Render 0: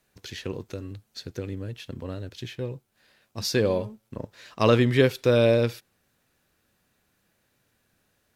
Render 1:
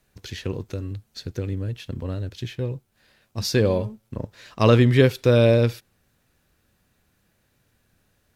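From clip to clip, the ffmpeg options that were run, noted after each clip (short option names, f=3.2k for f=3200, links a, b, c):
-af "lowshelf=f=130:g=10,volume=1.5dB"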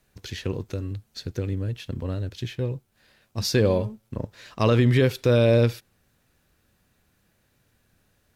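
-af "alimiter=limit=-10dB:level=0:latency=1:release=63"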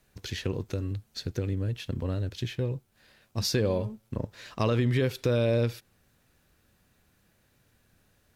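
-af "acompressor=threshold=-27dB:ratio=2"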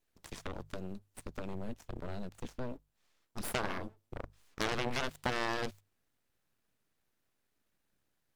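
-af "aeval=exprs='abs(val(0))':c=same,aeval=exprs='0.211*(cos(1*acos(clip(val(0)/0.211,-1,1)))-cos(1*PI/2))+0.0596*(cos(3*acos(clip(val(0)/0.211,-1,1)))-cos(3*PI/2))+0.00531*(cos(5*acos(clip(val(0)/0.211,-1,1)))-cos(5*PI/2))+0.0299*(cos(8*acos(clip(val(0)/0.211,-1,1)))-cos(8*PI/2))':c=same,bandreject=f=50:t=h:w=6,bandreject=f=100:t=h:w=6,bandreject=f=150:t=h:w=6,volume=-1dB"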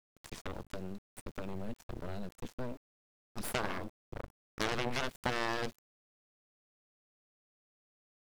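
-af "aeval=exprs='val(0)*gte(abs(val(0)),0.00237)':c=same"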